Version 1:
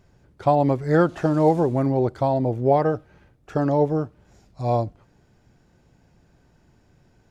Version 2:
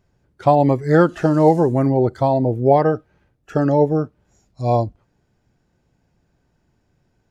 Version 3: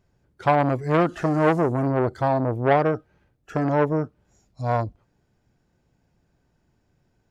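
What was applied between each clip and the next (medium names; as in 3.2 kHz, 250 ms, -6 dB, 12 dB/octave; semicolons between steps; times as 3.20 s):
spectral noise reduction 11 dB; trim +4.5 dB
transformer saturation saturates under 950 Hz; trim -2.5 dB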